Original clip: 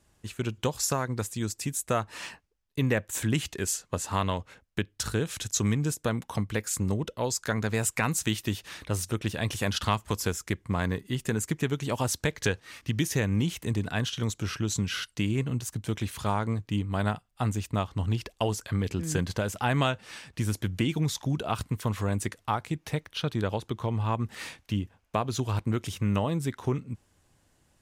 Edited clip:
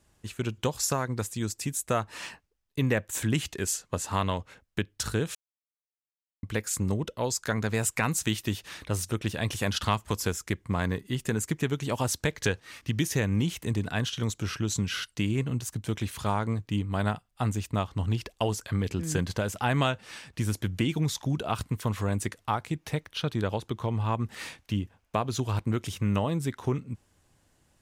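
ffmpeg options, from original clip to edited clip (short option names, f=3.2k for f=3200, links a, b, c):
-filter_complex "[0:a]asplit=3[a][b][c];[a]atrim=end=5.35,asetpts=PTS-STARTPTS,afade=t=out:st=5.346:d=0.004:c=hsin[d];[b]atrim=start=5.35:end=6.43,asetpts=PTS-STARTPTS,volume=0[e];[c]atrim=start=6.43,asetpts=PTS-STARTPTS,afade=t=in:d=0.004:c=hsin[f];[d][e][f]concat=n=3:v=0:a=1"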